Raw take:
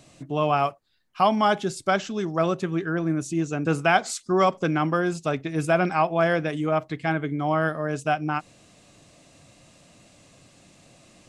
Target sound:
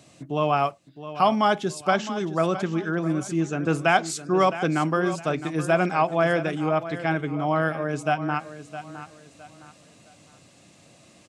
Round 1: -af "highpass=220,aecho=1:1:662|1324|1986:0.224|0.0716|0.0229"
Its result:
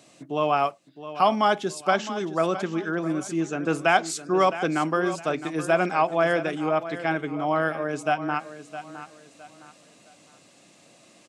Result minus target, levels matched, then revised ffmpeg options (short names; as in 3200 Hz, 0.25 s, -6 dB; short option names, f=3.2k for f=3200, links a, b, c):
125 Hz band -5.5 dB
-af "highpass=81,aecho=1:1:662|1324|1986:0.224|0.0716|0.0229"